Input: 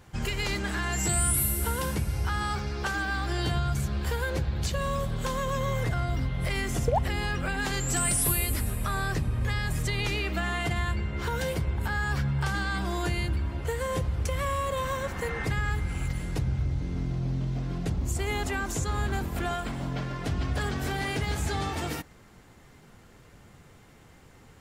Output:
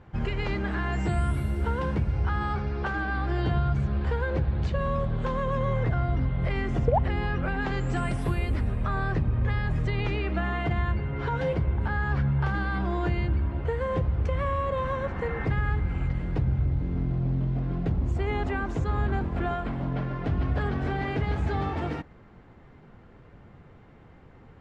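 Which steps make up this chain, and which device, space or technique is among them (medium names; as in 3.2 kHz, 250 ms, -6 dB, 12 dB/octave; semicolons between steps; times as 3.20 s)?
10.97–11.53 s: comb 7.3 ms, depth 53%; phone in a pocket (low-pass 3.3 kHz 12 dB/octave; treble shelf 2.2 kHz -11.5 dB); trim +3 dB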